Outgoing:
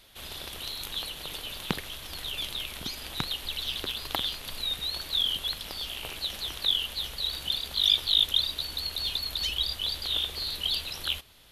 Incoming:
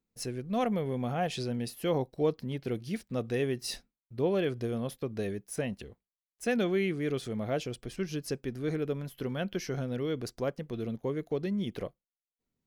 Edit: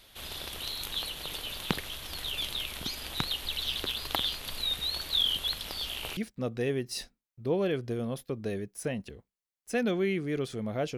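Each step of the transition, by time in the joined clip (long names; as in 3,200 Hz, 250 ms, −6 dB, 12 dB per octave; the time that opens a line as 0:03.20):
outgoing
0:06.17: continue with incoming from 0:02.90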